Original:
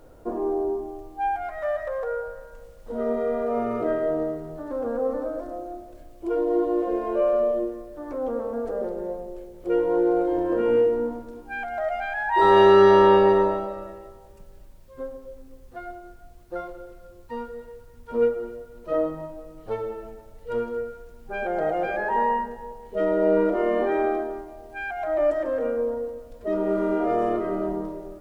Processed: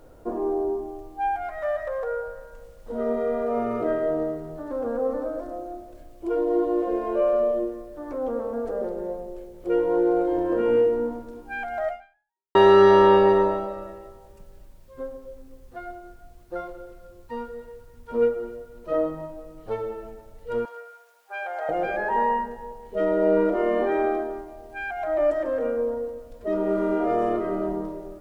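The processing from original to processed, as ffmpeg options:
ffmpeg -i in.wav -filter_complex "[0:a]asettb=1/sr,asplit=3[link_01][link_02][link_03];[link_01]atrim=end=20.654[link_04];[link_02]atrim=start=20.65:end=21.69,asetpts=PTS-STARTPTS,afade=type=in:duration=0.004:curve=qsin,afade=type=out:start_time=1.036:duration=0.004:curve=qsin,highpass=frequency=700:width=0.5412,highpass=frequency=700:width=1.3066[link_05];[link_03]atrim=start=21.686[link_06];[link_04][link_05]acrossfade=duration=0.004:curve1=hsin:curve2=qsin[link_07];[link_07][link_06]acrossfade=duration=0.004:curve1=qsin:curve2=hsin,asplit=2[link_08][link_09];[link_08]atrim=end=12.55,asetpts=PTS-STARTPTS,afade=type=out:start_time=11.89:duration=0.66:curve=exp[link_10];[link_09]atrim=start=12.55,asetpts=PTS-STARTPTS,afade=type=in:duration=0.004:curve=hsin[link_11];[link_10][link_11]concat=n=2:v=0:a=1" out.wav

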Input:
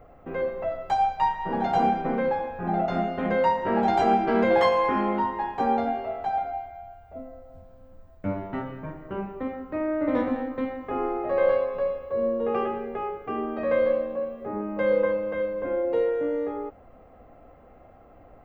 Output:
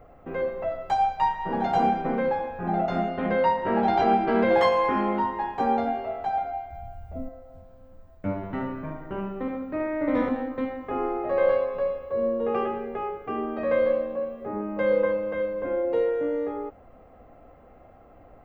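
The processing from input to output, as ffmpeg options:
ffmpeg -i in.wav -filter_complex "[0:a]asettb=1/sr,asplit=3[link_01][link_02][link_03];[link_01]atrim=end=3.094[link_04];[link_02]atrim=start=3.09:end=4.49,asetpts=PTS-STARTPTS,afade=type=in:duration=0.004:curve=qsin,afade=type=out:start_time=1.396:duration=0.004:curve=qsin,lowpass=frequency=5100:width=0.5412,lowpass=frequency=5100:width=1.3066[link_05];[link_03]atrim=start=4.486[link_06];[link_04][link_05]acrossfade=duration=0.004:curve1=hsin:curve2=qsin[link_07];[link_07][link_06]acrossfade=duration=0.004:curve1=qsin:curve2=hsin,asettb=1/sr,asplit=3[link_08][link_09][link_10];[link_08]atrim=end=6.704[link_11];[link_09]atrim=start=6.7:end=7.29,asetpts=PTS-STARTPTS,afade=type=in:duration=0.004:curve=qsin,afade=type=out:start_time=0.586:duration=0.004:curve=qsin,bass=frequency=250:gain=13,treble=frequency=4000:gain=6[link_12];[link_10]atrim=start=7.286[link_13];[link_11][link_12]acrossfade=duration=0.004:curve1=hsin:curve2=qsin[link_14];[link_14][link_13]acrossfade=duration=0.004:curve1=qsin:curve2=hsin,asettb=1/sr,asplit=3[link_15][link_16][link_17];[link_15]atrim=end=8.364[link_18];[link_16]atrim=start=8.36:end=10.29,asetpts=PTS-STARTPTS,afade=type=in:duration=0.004:curve=qsin,afade=type=out:start_time=1.926:duration=0.004:curve=qsin,aecho=1:1:72|144|216|288|360|432:0.501|0.256|0.13|0.0665|0.0339|0.0173,atrim=end_sample=85113[link_19];[link_17]atrim=start=10.286[link_20];[link_18][link_19]acrossfade=duration=0.004:curve1=hsin:curve2=qsin[link_21];[link_21][link_20]acrossfade=duration=0.004:curve1=qsin:curve2=hsin" out.wav

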